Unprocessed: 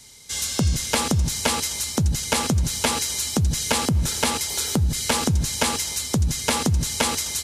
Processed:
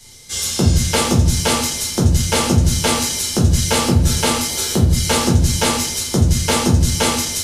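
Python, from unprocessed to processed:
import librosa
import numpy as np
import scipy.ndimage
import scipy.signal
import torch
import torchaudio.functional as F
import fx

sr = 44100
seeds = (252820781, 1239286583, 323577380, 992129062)

y = fx.room_shoebox(x, sr, seeds[0], volume_m3=42.0, walls='mixed', distance_m=1.0)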